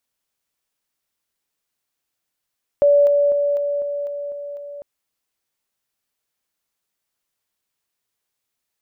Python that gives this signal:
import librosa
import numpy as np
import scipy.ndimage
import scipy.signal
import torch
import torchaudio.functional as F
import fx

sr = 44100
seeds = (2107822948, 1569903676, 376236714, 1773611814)

y = fx.level_ladder(sr, hz=575.0, from_db=-10.0, step_db=-3.0, steps=8, dwell_s=0.25, gap_s=0.0)